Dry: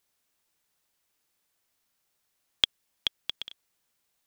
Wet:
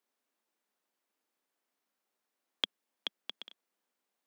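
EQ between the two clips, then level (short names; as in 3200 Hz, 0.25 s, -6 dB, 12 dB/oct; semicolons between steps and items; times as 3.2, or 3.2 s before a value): steep high-pass 200 Hz 48 dB/oct; high shelf 2100 Hz -11.5 dB; -1.0 dB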